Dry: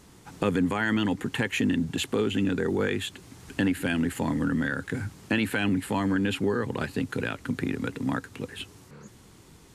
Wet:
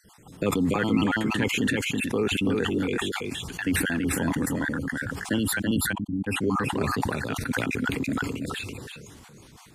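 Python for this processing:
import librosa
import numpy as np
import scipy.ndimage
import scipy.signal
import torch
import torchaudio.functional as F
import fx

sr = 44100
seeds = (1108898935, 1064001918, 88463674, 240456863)

p1 = fx.spec_dropout(x, sr, seeds[0], share_pct=47)
p2 = fx.cheby2_lowpass(p1, sr, hz=570.0, order=4, stop_db=40, at=(5.58, 6.26), fade=0.02)
p3 = p2 + fx.echo_single(p2, sr, ms=332, db=-4.0, dry=0)
y = fx.sustainer(p3, sr, db_per_s=24.0)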